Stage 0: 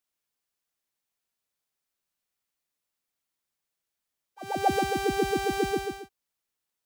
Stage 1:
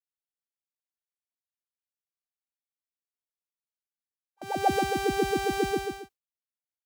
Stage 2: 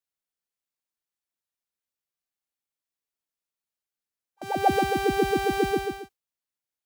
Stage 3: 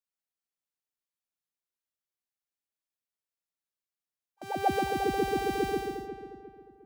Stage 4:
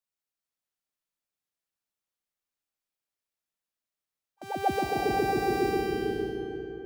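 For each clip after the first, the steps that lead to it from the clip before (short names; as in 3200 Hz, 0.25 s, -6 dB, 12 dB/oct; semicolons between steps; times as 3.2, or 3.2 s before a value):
gate with hold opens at -32 dBFS
dynamic EQ 6800 Hz, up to -5 dB, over -51 dBFS, Q 0.93; gain +3 dB
darkening echo 0.356 s, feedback 40%, low-pass 1800 Hz, level -9.5 dB; gain -5.5 dB
reverb RT60 3.4 s, pre-delay 0.233 s, DRR 0.5 dB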